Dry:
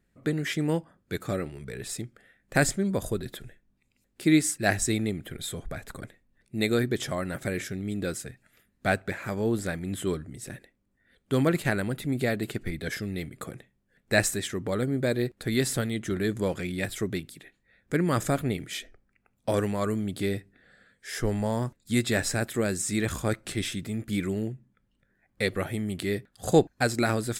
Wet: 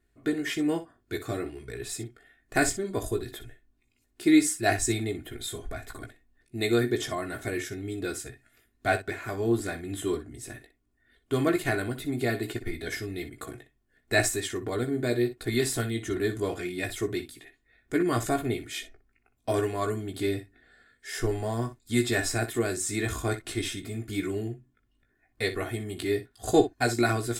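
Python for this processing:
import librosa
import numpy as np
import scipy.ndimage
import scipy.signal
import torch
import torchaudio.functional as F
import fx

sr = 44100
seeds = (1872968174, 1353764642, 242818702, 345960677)

y = x + 0.71 * np.pad(x, (int(2.8 * sr / 1000.0), 0))[:len(x)]
y = fx.room_early_taps(y, sr, ms=(17, 61), db=(-6.5, -12.5))
y = y * 10.0 ** (-3.0 / 20.0)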